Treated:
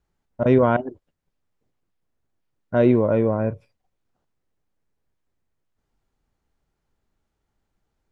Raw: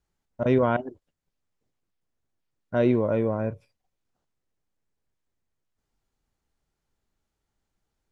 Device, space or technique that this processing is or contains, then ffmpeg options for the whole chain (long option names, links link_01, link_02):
behind a face mask: -af "highshelf=frequency=3200:gain=-8,volume=5dB"